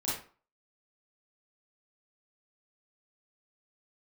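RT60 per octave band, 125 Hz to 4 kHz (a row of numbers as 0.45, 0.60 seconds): 0.40, 0.40, 0.40, 0.45, 0.35, 0.30 seconds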